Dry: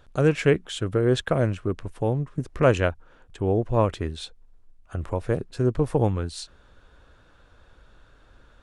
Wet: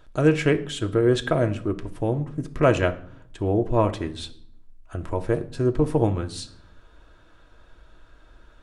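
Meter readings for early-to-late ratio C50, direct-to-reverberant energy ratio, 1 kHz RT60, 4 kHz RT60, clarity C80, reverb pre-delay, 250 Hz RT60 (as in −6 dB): 16.0 dB, 5.5 dB, 0.60 s, 0.50 s, 19.5 dB, 3 ms, 1.0 s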